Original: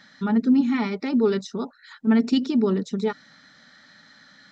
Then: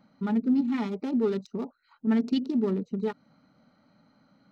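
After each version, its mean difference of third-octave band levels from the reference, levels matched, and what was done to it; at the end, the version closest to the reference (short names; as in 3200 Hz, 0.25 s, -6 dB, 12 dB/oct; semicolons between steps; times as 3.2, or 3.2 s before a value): 3.0 dB: Wiener smoothing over 25 samples; in parallel at -0.5 dB: compressor, threshold -30 dBFS, peak gain reduction 14.5 dB; on the sum: gain -7 dB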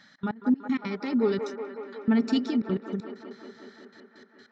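5.5 dB: step gate "xx.x..x..x.xxxxx" 195 bpm -24 dB; band-limited delay 0.184 s, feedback 75%, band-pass 890 Hz, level -5 dB; gain -4 dB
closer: first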